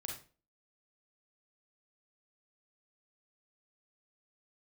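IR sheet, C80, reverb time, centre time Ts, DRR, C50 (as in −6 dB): 10.5 dB, 0.35 s, 33 ms, −0.5 dB, 4.0 dB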